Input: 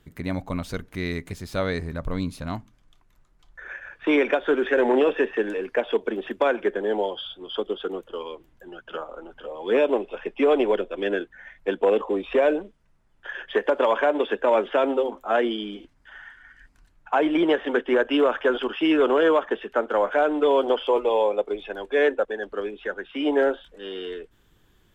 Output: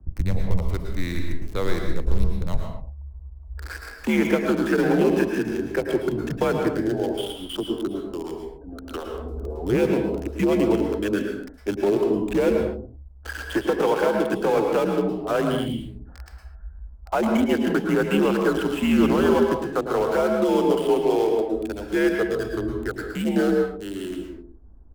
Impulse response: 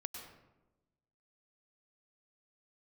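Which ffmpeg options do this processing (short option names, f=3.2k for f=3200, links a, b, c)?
-filter_complex "[0:a]lowshelf=f=180:g=5,asplit=2[a][b];[b]acompressor=threshold=-32dB:ratio=10,volume=-1dB[c];[a][c]amix=inputs=2:normalize=0,afreqshift=-86,acrossover=split=130|900[d][e][f];[d]aphaser=in_gain=1:out_gain=1:delay=3.2:decay=0.77:speed=0.31:type=triangular[g];[e]aecho=1:1:95:0.355[h];[f]aeval=exprs='val(0)*gte(abs(val(0)),0.0299)':c=same[i];[g][h][i]amix=inputs=3:normalize=0[j];[1:a]atrim=start_sample=2205,afade=t=out:st=0.29:d=0.01,atrim=end_sample=13230,asetrate=39690,aresample=44100[k];[j][k]afir=irnorm=-1:irlink=0"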